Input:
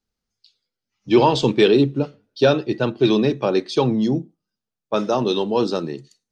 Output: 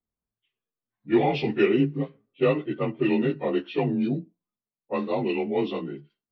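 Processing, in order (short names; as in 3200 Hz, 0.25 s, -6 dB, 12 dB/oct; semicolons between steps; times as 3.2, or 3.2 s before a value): inharmonic rescaling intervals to 88%; low-pass opened by the level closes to 1200 Hz, open at -13.5 dBFS; gain -4.5 dB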